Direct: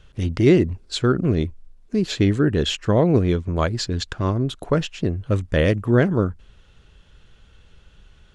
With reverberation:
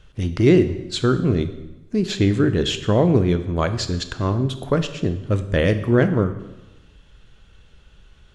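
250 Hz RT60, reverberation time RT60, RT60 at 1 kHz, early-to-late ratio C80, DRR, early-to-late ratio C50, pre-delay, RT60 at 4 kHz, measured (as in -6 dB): 1.1 s, 1.0 s, 1.0 s, 14.0 dB, 9.5 dB, 12.0 dB, 12 ms, 0.95 s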